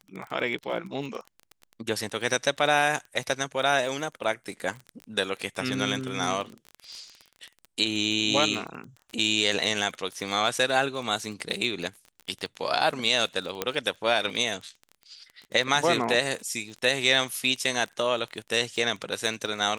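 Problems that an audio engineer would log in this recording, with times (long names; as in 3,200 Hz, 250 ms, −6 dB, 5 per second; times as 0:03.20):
surface crackle 19 per second −32 dBFS
0:13.62: click −10 dBFS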